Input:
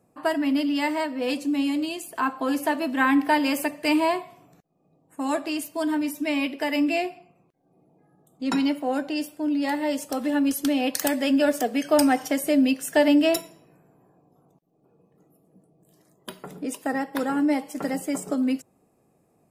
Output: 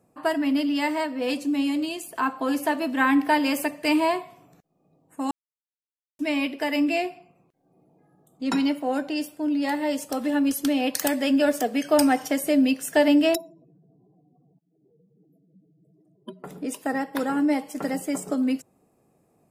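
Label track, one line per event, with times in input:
5.310000	6.190000	silence
13.350000	16.440000	expanding power law on the bin magnitudes exponent 2.7

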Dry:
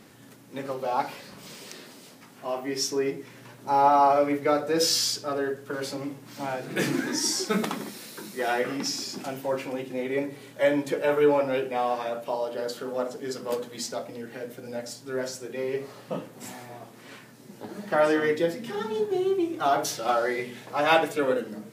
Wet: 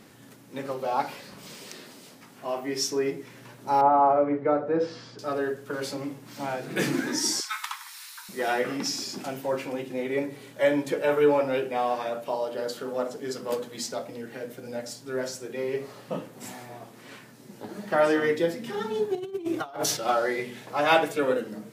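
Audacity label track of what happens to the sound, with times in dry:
3.810000	5.190000	low-pass filter 1,300 Hz
7.400000	8.290000	Butterworth high-pass 900 Hz 72 dB per octave
19.150000	19.970000	compressor whose output falls as the input rises −30 dBFS, ratio −0.5

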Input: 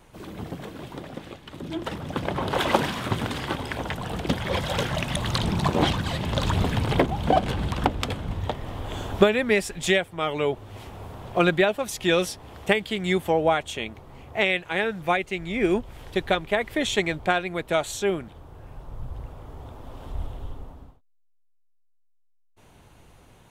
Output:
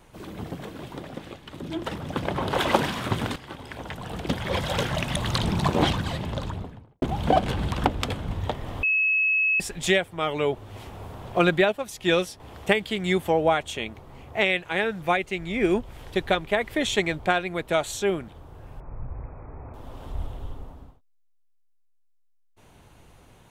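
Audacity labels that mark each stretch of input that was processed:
3.360000	4.630000	fade in, from −14.5 dB
5.850000	7.020000	fade out and dull
8.830000	9.600000	beep over 2,580 Hz −19 dBFS
11.720000	12.400000	expander for the loud parts, over −31 dBFS
18.800000	19.740000	linear-phase brick-wall low-pass 2,600 Hz

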